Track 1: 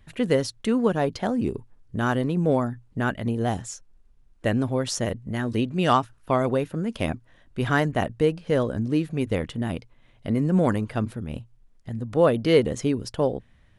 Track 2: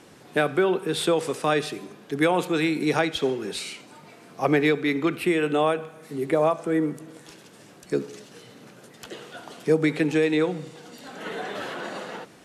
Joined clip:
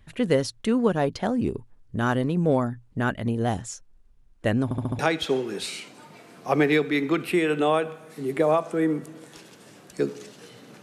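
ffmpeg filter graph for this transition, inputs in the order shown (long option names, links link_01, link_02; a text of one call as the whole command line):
ffmpeg -i cue0.wav -i cue1.wav -filter_complex "[0:a]apad=whole_dur=10.82,atrim=end=10.82,asplit=5[link_01][link_02][link_03][link_04][link_05];[link_01]atrim=end=4.712[link_06];[link_02]atrim=start=4.638:end=4.712[link_07];[link_03]atrim=start=4.638:end=4.712[link_08];[link_04]atrim=start=4.638:end=4.712[link_09];[link_05]atrim=start=4.638:end=4.712[link_10];[1:a]atrim=start=2.918:end=8.75[link_11];[link_06][link_07]acrossfade=duration=0.004:curve1=hsin:curve2=hsin[link_12];[link_12][link_08]acrossfade=duration=0.004:curve1=hsin:curve2=hsin[link_13];[link_13][link_09]acrossfade=duration=0.004:curve1=hsin:curve2=hsin[link_14];[link_14][link_10]acrossfade=duration=0.004:curve1=hsin:curve2=hsin[link_15];[link_15][link_11]acrossfade=duration=0.004:curve1=hsin:curve2=hsin" out.wav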